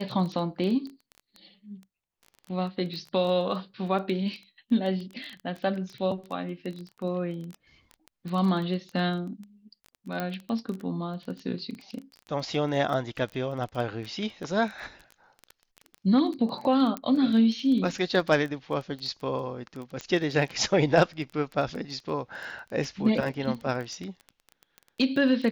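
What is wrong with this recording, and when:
surface crackle 14 per second −32 dBFS
0:10.20: click −17 dBFS
0:16.97: click −16 dBFS
0:20.01: click −21 dBFS

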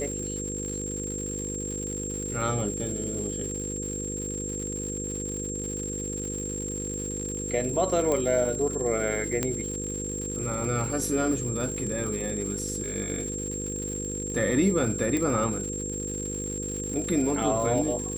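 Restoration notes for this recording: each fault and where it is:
mains buzz 50 Hz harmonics 10 −35 dBFS
surface crackle 200 per second −34 dBFS
whistle 7,500 Hz −33 dBFS
0:08.12: click −15 dBFS
0:09.43: click −11 dBFS
0:15.17: click −15 dBFS

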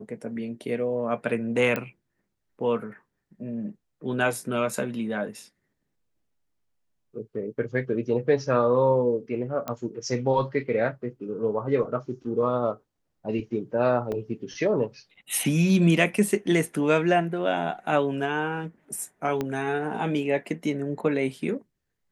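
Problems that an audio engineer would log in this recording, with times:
0:01.76: click −14 dBFS
0:09.68: click −16 dBFS
0:14.12: drop-out 2.5 ms
0:19.41: click −15 dBFS

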